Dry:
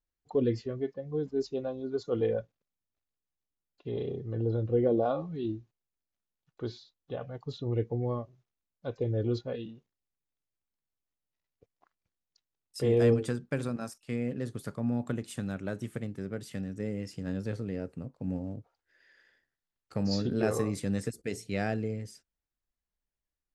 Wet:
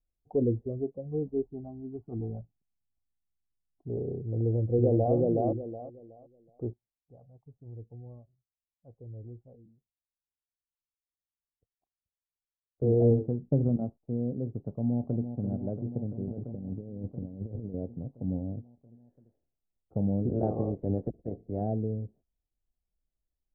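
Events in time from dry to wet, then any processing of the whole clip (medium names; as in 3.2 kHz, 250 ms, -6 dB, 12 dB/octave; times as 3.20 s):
1.47–3.90 s: static phaser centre 1.9 kHz, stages 6
4.41–5.15 s: echo throw 370 ms, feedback 25%, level -1 dB
6.73–12.82 s: amplifier tone stack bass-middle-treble 5-5-5
13.46–13.97 s: bass shelf 390 Hz +7.5 dB
14.69–15.31 s: echo throw 340 ms, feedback 80%, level -9 dB
16.25–17.74 s: compressor with a negative ratio -38 dBFS, ratio -0.5
20.28–21.60 s: spectral peaks clipped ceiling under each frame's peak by 15 dB
whole clip: Chebyshev low-pass 740 Hz, order 4; bass shelf 100 Hz +9.5 dB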